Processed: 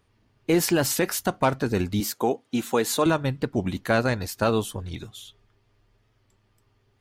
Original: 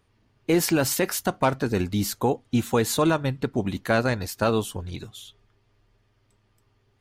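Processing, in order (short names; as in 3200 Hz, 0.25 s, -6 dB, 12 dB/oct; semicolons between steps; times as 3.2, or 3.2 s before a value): 2–3.06 HPF 230 Hz 12 dB/oct; record warp 45 rpm, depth 100 cents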